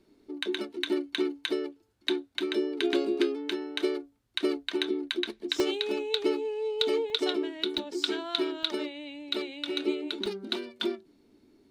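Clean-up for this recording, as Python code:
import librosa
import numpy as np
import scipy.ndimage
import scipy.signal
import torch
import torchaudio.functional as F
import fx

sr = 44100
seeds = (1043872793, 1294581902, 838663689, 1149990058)

y = fx.fix_interpolate(x, sr, at_s=(4.23, 5.6, 7.1, 7.78, 8.63, 10.26), length_ms=1.1)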